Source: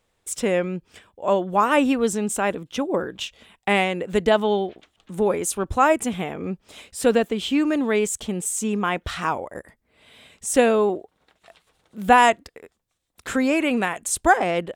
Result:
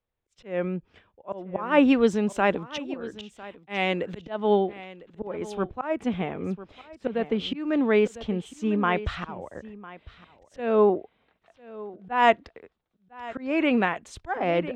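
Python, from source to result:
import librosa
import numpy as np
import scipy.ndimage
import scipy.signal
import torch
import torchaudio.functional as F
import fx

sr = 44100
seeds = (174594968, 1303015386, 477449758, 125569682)

y = fx.high_shelf(x, sr, hz=4100.0, db=9.0, at=(1.88, 4.25))
y = fx.auto_swell(y, sr, attack_ms=239.0)
y = fx.air_absorb(y, sr, metres=240.0)
y = y + 10.0 ** (-13.5 / 20.0) * np.pad(y, (int(1002 * sr / 1000.0), 0))[:len(y)]
y = fx.band_widen(y, sr, depth_pct=40)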